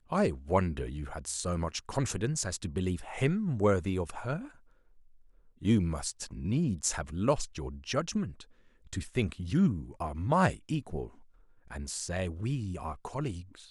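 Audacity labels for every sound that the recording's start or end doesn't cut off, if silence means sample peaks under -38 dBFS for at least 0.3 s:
5.630000	8.420000	sound
8.930000	11.070000	sound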